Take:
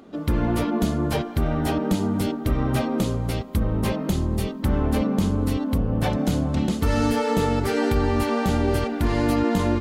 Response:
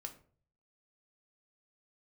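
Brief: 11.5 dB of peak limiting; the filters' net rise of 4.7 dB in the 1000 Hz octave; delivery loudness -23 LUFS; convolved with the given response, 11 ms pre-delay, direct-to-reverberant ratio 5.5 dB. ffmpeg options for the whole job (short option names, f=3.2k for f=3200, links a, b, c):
-filter_complex "[0:a]equalizer=f=1k:t=o:g=6,alimiter=limit=-21dB:level=0:latency=1,asplit=2[a][b];[1:a]atrim=start_sample=2205,adelay=11[c];[b][c]afir=irnorm=-1:irlink=0,volume=-2dB[d];[a][d]amix=inputs=2:normalize=0,volume=5.5dB"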